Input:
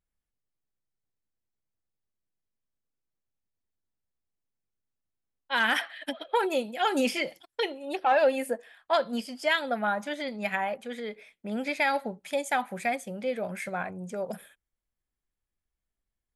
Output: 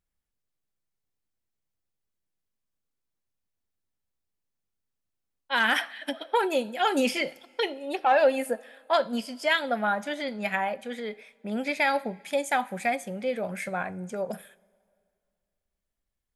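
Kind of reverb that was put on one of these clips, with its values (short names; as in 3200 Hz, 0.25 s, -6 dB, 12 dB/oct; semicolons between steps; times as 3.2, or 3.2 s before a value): two-slope reverb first 0.31 s, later 2.2 s, from -18 dB, DRR 15.5 dB; gain +1.5 dB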